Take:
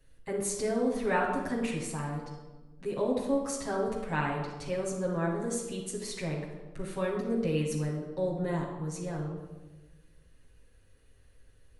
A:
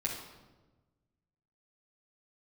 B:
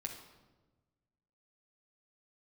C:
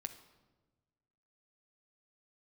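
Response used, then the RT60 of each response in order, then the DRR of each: A; 1.2, 1.2, 1.3 s; -5.5, 0.5, 7.0 dB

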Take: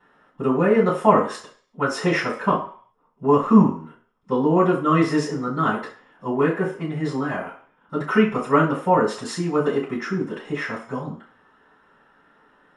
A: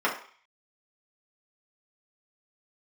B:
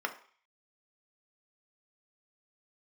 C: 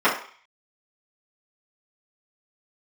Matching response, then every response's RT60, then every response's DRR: C; 0.45, 0.45, 0.45 s; -5.5, 4.0, -12.5 dB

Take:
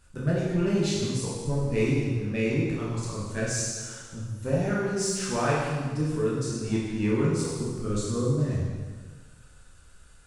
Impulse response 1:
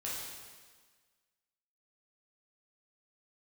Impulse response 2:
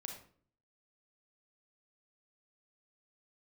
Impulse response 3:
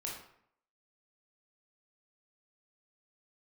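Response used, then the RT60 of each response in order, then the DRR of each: 1; 1.5, 0.50, 0.65 s; -7.0, 2.0, -3.0 dB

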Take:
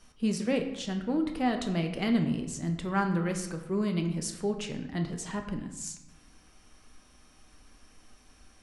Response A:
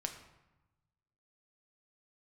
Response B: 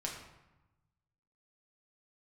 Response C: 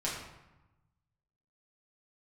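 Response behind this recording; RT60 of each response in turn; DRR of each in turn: A; 1.0, 1.0, 1.0 s; 4.0, -2.0, -6.5 dB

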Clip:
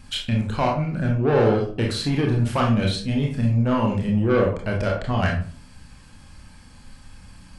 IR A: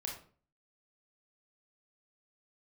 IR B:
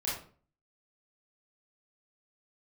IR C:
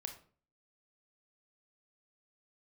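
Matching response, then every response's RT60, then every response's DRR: A; 0.45, 0.45, 0.45 s; -1.0, -8.0, 4.5 dB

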